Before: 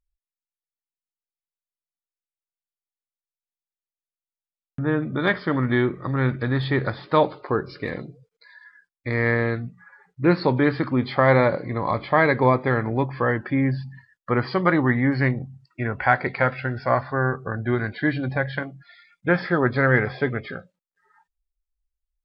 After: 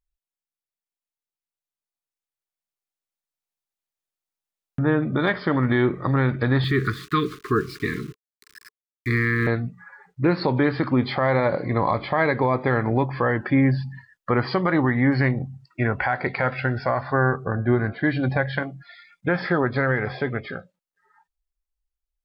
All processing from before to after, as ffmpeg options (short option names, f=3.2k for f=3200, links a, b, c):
-filter_complex "[0:a]asettb=1/sr,asplit=3[a][b][c];[a]atrim=end=6.644[d];[b]atrim=start=6.64:end=9.47,asetpts=PTS-STARTPTS,afade=t=in:d=0.004:c=qsin,afade=t=out:st=2.826:d=0.004:c=qsin,aeval=exprs='val(0)*gte(abs(val(0)),0.00708)':c=same,asuperstop=centerf=690:order=20:qfactor=1.1[e];[c]atrim=start=9.466[f];[d][e]acrossfade=d=0.004:c1=hsin:c2=qsin[g];[g][f]acrossfade=d=0.004:c1=qsin:c2=hsin,asettb=1/sr,asplit=3[h][i][j];[h]atrim=end=17.454[k];[i]atrim=start=17.45:end=18.04,asetpts=PTS-STARTPTS,afade=t=in:d=0.004:c=qsin,afade=t=out:st=0.586:d=0.004:c=qsin,lowpass=f=1.1k:p=1,bandreject=f=136.4:t=h:w=4,bandreject=f=272.8:t=h:w=4,bandreject=f=409.2:t=h:w=4,bandreject=f=545.6:t=h:w=4,bandreject=f=682:t=h:w=4,bandreject=f=818.4:t=h:w=4,bandreject=f=954.8:t=h:w=4,bandreject=f=1.0912k:t=h:w=4,bandreject=f=1.2276k:t=h:w=4,bandreject=f=1.364k:t=h:w=4,bandreject=f=1.5004k:t=h:w=4,bandreject=f=1.6368k:t=h:w=4[l];[j]atrim=start=18.036[m];[k][l]acrossfade=d=0.004:c1=hsin:c2=qsin[n];[n][m]acrossfade=d=0.004:c1=qsin:c2=hsin,equalizer=f=770:t=o:w=0.66:g=2.5,alimiter=limit=-14.5dB:level=0:latency=1:release=159,dynaudnorm=f=590:g=9:m=6.5dB,volume=-2.5dB"